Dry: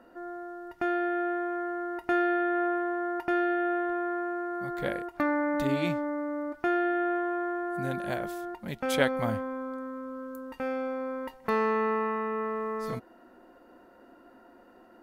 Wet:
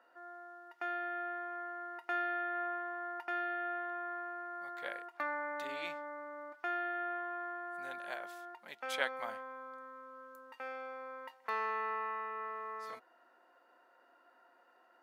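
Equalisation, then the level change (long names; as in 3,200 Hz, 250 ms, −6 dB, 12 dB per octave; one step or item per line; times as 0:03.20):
high-pass filter 860 Hz 12 dB per octave
high-shelf EQ 7,000 Hz −10 dB
−4.5 dB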